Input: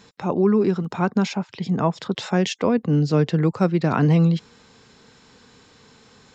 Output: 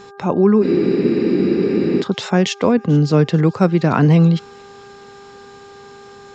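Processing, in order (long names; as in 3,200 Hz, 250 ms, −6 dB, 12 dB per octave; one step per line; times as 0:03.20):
delay with a high-pass on its return 437 ms, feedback 60%, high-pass 2,400 Hz, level −23 dB
hum with harmonics 400 Hz, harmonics 4, −46 dBFS −5 dB per octave
frozen spectrum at 0:00.64, 1.37 s
level +5 dB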